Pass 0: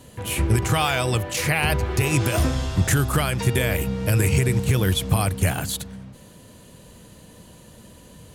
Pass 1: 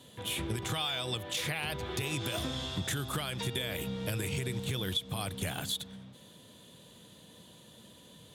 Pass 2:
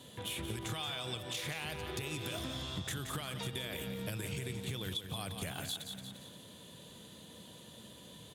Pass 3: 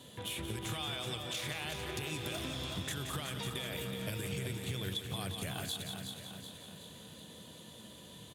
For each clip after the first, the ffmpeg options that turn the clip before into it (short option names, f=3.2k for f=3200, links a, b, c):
-af "highpass=120,equalizer=f=3.5k:w=4.7:g=15,acompressor=threshold=-22dB:ratio=6,volume=-8.5dB"
-af "aeval=exprs='0.106*(cos(1*acos(clip(val(0)/0.106,-1,1)))-cos(1*PI/2))+0.00188*(cos(7*acos(clip(val(0)/0.106,-1,1)))-cos(7*PI/2))':c=same,aecho=1:1:175|350|525|700:0.355|0.135|0.0512|0.0195,acompressor=threshold=-45dB:ratio=2,volume=2.5dB"
-af "aecho=1:1:375|750|1125|1500|1875|2250:0.422|0.223|0.118|0.0628|0.0333|0.0176"